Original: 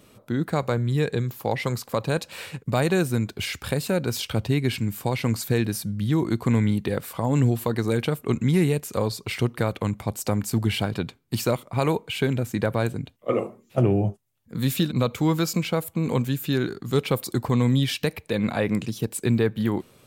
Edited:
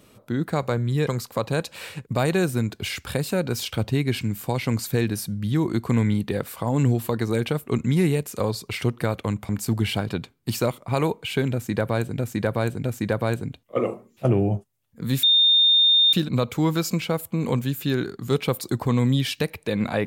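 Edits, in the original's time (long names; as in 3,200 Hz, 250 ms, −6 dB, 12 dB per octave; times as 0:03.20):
0:01.07–0:01.64: remove
0:10.06–0:10.34: remove
0:12.37–0:13.03: repeat, 3 plays
0:14.76: insert tone 3,640 Hz −13.5 dBFS 0.90 s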